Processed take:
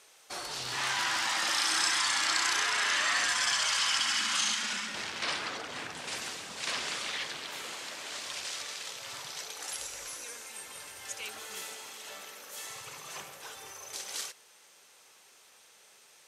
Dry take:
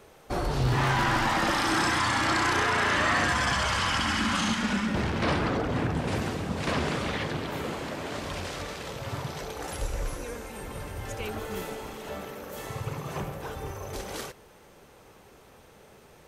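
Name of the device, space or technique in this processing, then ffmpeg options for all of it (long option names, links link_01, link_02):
piezo pickup straight into a mixer: -af "lowpass=7700,aderivative,volume=8.5dB"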